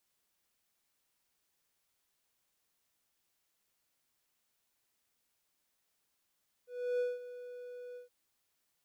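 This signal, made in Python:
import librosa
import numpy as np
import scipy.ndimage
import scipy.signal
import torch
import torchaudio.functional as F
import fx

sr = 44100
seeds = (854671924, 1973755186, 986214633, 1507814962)

y = fx.adsr_tone(sr, wave='triangle', hz=492.0, attack_ms=325.0, decay_ms=191.0, sustain_db=-15.0, held_s=1.29, release_ms=128.0, level_db=-27.0)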